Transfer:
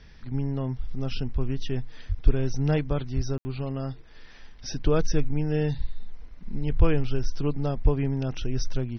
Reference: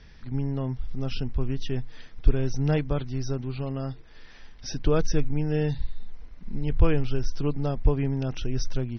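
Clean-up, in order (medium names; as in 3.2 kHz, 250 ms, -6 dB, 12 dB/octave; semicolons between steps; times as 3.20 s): 2.08–2.20 s: high-pass 140 Hz 24 dB/octave; 3.15–3.27 s: high-pass 140 Hz 24 dB/octave; room tone fill 3.38–3.45 s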